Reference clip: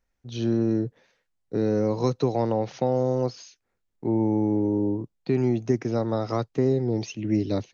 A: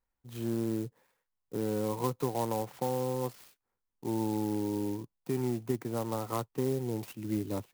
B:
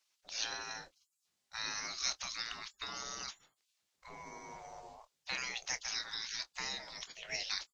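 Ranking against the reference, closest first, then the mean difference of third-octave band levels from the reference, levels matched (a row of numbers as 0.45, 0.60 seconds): A, B; 9.0, 17.5 decibels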